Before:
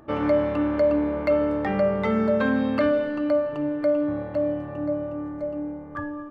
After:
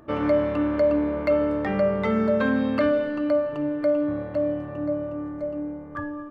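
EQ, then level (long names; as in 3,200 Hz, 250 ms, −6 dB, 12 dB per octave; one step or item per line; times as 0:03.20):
notch filter 820 Hz, Q 12
0.0 dB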